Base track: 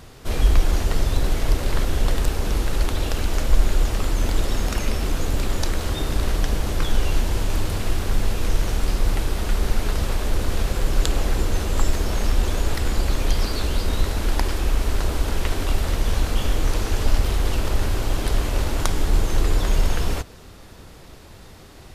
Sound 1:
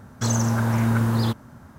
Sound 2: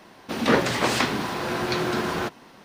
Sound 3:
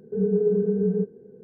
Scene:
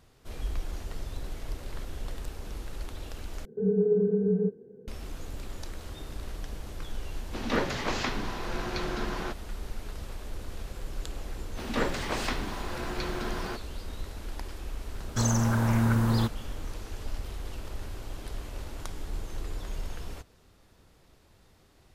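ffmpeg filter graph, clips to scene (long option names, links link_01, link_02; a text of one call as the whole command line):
ffmpeg -i bed.wav -i cue0.wav -i cue1.wav -i cue2.wav -filter_complex "[2:a]asplit=2[link_01][link_02];[0:a]volume=-16.5dB[link_03];[link_01]aresample=16000,aresample=44100[link_04];[link_03]asplit=2[link_05][link_06];[link_05]atrim=end=3.454[link_07];[3:a]atrim=end=1.43,asetpts=PTS-STARTPTS,volume=-2.5dB[link_08];[link_06]atrim=start=4.876[link_09];[link_04]atrim=end=2.64,asetpts=PTS-STARTPTS,volume=-8.5dB,afade=type=in:duration=0.004:curve=hsin,afade=type=out:start_time=2.636:duration=0.004:curve=hsin,adelay=7040[link_10];[link_02]atrim=end=2.64,asetpts=PTS-STARTPTS,volume=-9.5dB,afade=type=in:duration=0.004:curve=hsin,afade=type=out:start_time=2.636:duration=0.004:curve=hsin,adelay=11280[link_11];[1:a]atrim=end=1.78,asetpts=PTS-STARTPTS,volume=-3.5dB,afade=type=in:duration=0.004:curve=hsin,afade=type=out:start_time=1.776:duration=0.004:curve=hsin,adelay=14950[link_12];[link_07][link_08]acrossfade=duration=0.004:curve1=hsin:curve2=hsin[link_13];[link_13][link_09]acrossfade=duration=0.004:curve1=hsin:curve2=hsin[link_14];[link_14][link_10][link_11][link_12]amix=inputs=4:normalize=0" out.wav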